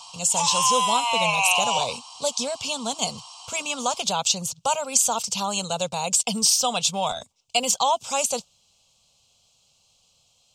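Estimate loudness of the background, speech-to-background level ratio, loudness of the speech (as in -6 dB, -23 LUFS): -22.0 LUFS, -1.5 dB, -23.5 LUFS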